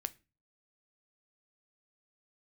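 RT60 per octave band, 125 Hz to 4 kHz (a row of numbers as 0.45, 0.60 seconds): 0.55, 0.45, 0.35, 0.30, 0.30, 0.25 seconds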